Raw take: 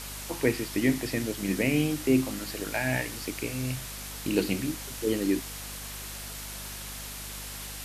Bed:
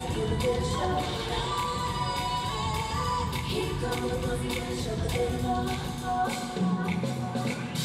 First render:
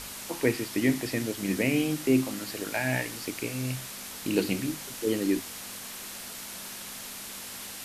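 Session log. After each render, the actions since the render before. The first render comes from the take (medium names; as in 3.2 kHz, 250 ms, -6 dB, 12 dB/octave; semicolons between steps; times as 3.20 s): hum notches 50/100/150 Hz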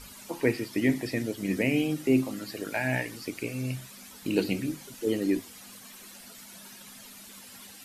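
noise reduction 12 dB, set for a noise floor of -41 dBFS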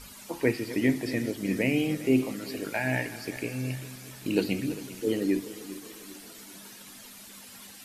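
backward echo that repeats 198 ms, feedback 67%, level -14 dB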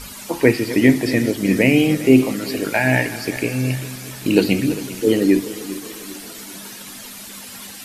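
trim +11.5 dB; peak limiter -1 dBFS, peak gain reduction 1.5 dB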